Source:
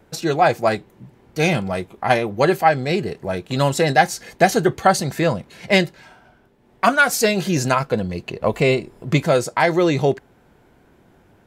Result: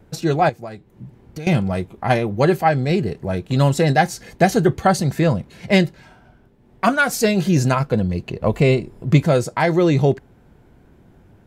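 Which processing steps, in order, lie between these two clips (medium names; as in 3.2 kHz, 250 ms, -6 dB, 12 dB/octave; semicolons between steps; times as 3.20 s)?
bass shelf 260 Hz +11.5 dB; 0.49–1.47 s: compression 8:1, threshold -27 dBFS, peak gain reduction 17.5 dB; trim -3 dB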